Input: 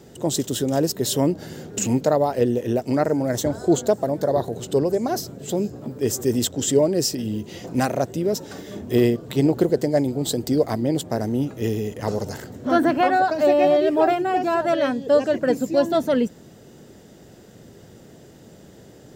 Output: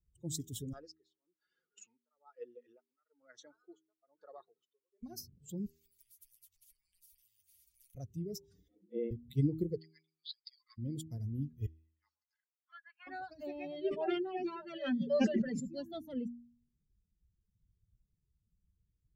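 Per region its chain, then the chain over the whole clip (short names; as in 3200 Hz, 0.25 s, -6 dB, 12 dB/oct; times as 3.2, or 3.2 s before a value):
0.73–5.03 bell 1300 Hz +14 dB 0.58 oct + tremolo 1.1 Hz, depth 93% + BPF 480–4300 Hz
5.66–7.95 doubler 12 ms -12.5 dB + compressor 12:1, threshold -32 dBFS + spectral compressor 10:1
8.68–9.11 air absorption 390 m + frequency shift +110 Hz
9.78–10.78 upward compressor, threshold -20 dBFS + brick-wall FIR band-pass 980–5100 Hz
11.66–13.07 HPF 1100 Hz 24 dB/oct + tape spacing loss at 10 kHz 20 dB + mismatched tape noise reduction decoder only
13.84–15.67 BPF 170–5400 Hz + comb 5.1 ms, depth 96% + sustainer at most 41 dB/s
whole clip: per-bin expansion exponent 2; passive tone stack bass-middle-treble 10-0-1; de-hum 79.55 Hz, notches 5; gain +9 dB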